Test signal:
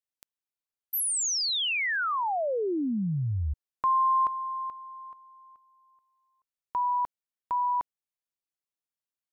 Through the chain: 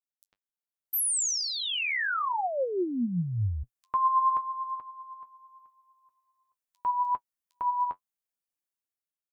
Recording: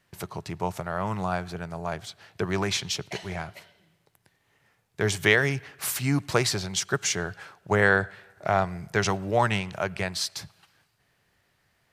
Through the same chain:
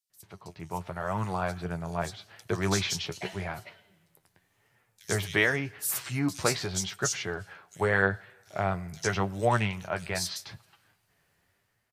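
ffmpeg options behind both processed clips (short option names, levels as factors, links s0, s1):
-filter_complex "[0:a]highshelf=f=7600:g=5.5,flanger=delay=7.9:depth=4.9:regen=42:speed=0.85:shape=triangular,acrossover=split=4100[s0][s1];[s0]adelay=100[s2];[s2][s1]amix=inputs=2:normalize=0,dynaudnorm=f=240:g=7:m=3.55,volume=0.398"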